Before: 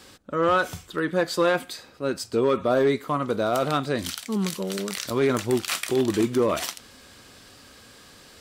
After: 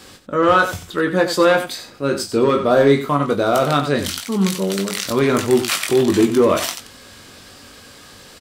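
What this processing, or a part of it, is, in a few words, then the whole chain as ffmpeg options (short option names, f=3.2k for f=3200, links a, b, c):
slapback doubling: -filter_complex "[0:a]asettb=1/sr,asplit=3[a][b][c];[a]atrim=end=1.634[d];[b]atrim=start=1.63:end=3.1,asetpts=PTS-STARTPTS,afade=t=in:d=0.004:c=qsin,afade=t=out:st=1.466:d=0.004:c=qsin,asplit=2[e][f];[f]adelay=36,volume=-10dB[g];[e][g]amix=inputs=2:normalize=0,atrim=end_sample=64827[h];[c]atrim=start=3.096[i];[d][h]acrossfade=d=0.004:c1=hsin:c2=qsin[j];[j][i]acrossfade=d=0.004:c1=qsin:c2=hsin,asplit=3[k][l][m];[l]adelay=21,volume=-6dB[n];[m]adelay=92,volume=-10dB[o];[k][n][o]amix=inputs=3:normalize=0,volume=6dB"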